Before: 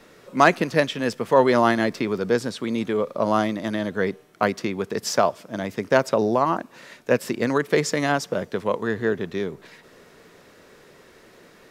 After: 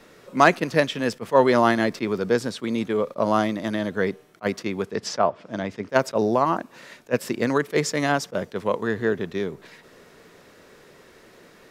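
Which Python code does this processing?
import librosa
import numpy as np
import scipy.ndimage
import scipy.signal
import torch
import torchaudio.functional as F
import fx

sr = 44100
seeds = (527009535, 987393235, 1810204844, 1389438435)

y = fx.env_lowpass_down(x, sr, base_hz=2100.0, full_db=-19.0, at=(4.84, 5.89))
y = fx.attack_slew(y, sr, db_per_s=530.0)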